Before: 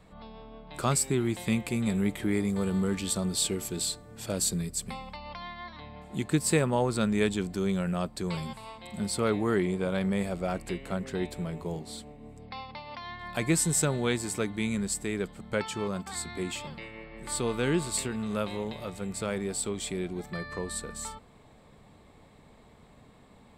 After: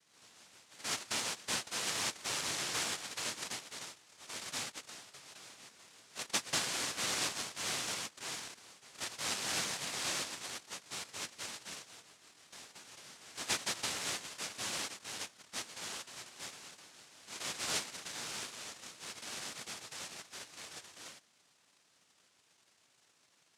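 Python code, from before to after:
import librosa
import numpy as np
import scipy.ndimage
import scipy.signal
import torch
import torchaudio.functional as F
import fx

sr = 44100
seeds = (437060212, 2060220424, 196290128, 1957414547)

y = fx.env_phaser(x, sr, low_hz=170.0, high_hz=1700.0, full_db=-23.5)
y = fx.noise_vocoder(y, sr, seeds[0], bands=1)
y = F.gain(torch.from_numpy(y), -9.0).numpy()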